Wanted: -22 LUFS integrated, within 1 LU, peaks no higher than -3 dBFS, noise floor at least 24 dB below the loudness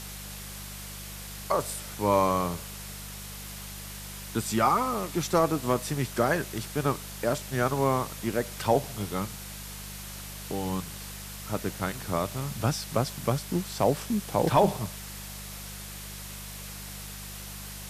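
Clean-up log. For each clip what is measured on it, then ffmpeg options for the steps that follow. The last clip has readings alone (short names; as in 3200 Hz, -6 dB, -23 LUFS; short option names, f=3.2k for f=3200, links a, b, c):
hum 50 Hz; harmonics up to 200 Hz; hum level -41 dBFS; noise floor -41 dBFS; noise floor target -54 dBFS; loudness -30.0 LUFS; peak -11.0 dBFS; loudness target -22.0 LUFS
-> -af "bandreject=f=50:t=h:w=4,bandreject=f=100:t=h:w=4,bandreject=f=150:t=h:w=4,bandreject=f=200:t=h:w=4"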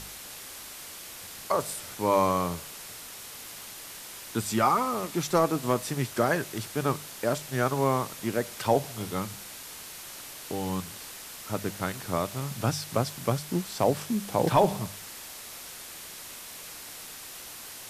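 hum none; noise floor -43 dBFS; noise floor target -55 dBFS
-> -af "afftdn=nr=12:nf=-43"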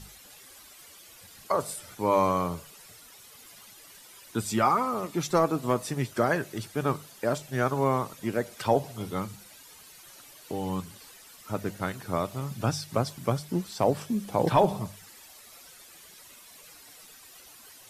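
noise floor -51 dBFS; noise floor target -53 dBFS
-> -af "afftdn=nr=6:nf=-51"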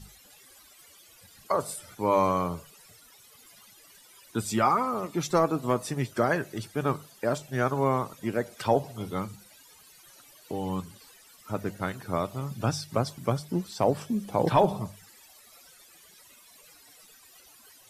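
noise floor -55 dBFS; loudness -29.0 LUFS; peak -11.0 dBFS; loudness target -22.0 LUFS
-> -af "volume=7dB"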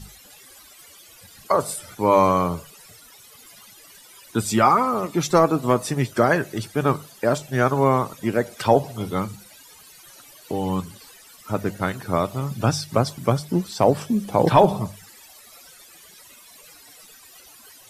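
loudness -22.0 LUFS; peak -4.0 dBFS; noise floor -48 dBFS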